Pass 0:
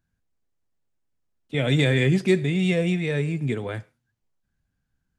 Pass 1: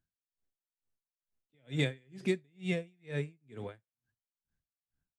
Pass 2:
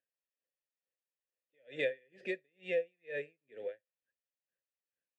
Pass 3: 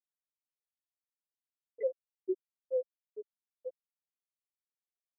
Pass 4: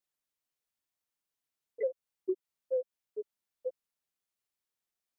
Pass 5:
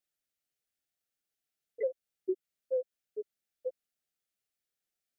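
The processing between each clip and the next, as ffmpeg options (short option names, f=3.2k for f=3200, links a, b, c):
-af "aeval=exprs='val(0)*pow(10,-38*(0.5-0.5*cos(2*PI*2.2*n/s))/20)':c=same,volume=-8dB"
-filter_complex "[0:a]asplit=3[a][b][c];[a]bandpass=f=530:t=q:w=8,volume=0dB[d];[b]bandpass=f=1.84k:t=q:w=8,volume=-6dB[e];[c]bandpass=f=2.48k:t=q:w=8,volume=-9dB[f];[d][e][f]amix=inputs=3:normalize=0,lowshelf=f=240:g=-10,volume=10.5dB"
-af "afftfilt=real='re*gte(hypot(re,im),0.141)':imag='im*gte(hypot(re,im),0.141)':win_size=1024:overlap=0.75,aecho=1:1:3.2:0.65,volume=3.5dB"
-af "acompressor=threshold=-35dB:ratio=3,volume=5.5dB"
-af "asuperstop=centerf=1000:order=4:qfactor=2.4"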